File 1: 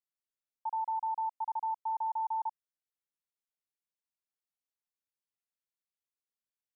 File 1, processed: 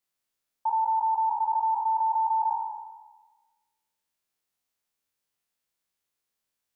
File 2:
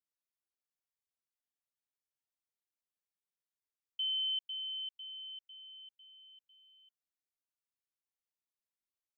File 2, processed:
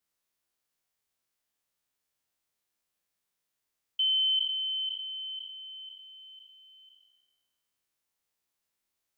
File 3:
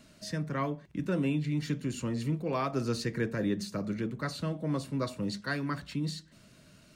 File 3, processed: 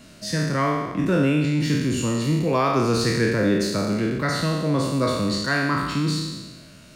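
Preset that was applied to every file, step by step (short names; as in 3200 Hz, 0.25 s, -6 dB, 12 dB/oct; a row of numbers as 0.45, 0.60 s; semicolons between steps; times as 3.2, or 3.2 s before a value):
spectral trails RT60 1.28 s; gain +8 dB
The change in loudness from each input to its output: +8.5, +8.0, +11.0 LU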